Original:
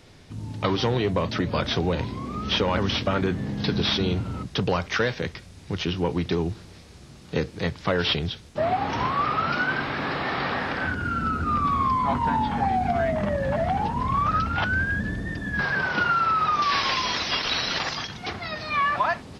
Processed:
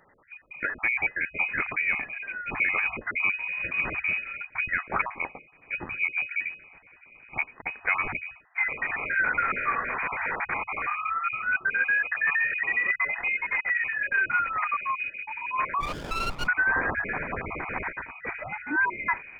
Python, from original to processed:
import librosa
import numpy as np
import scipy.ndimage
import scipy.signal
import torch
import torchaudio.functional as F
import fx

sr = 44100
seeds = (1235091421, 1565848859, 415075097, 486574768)

y = fx.spec_dropout(x, sr, seeds[0], share_pct=34)
y = scipy.signal.sosfilt(scipy.signal.cheby1(10, 1.0, 180.0, 'highpass', fs=sr, output='sos'), y)
y = fx.freq_invert(y, sr, carrier_hz=2700)
y = fx.running_max(y, sr, window=17, at=(15.8, 16.46), fade=0.02)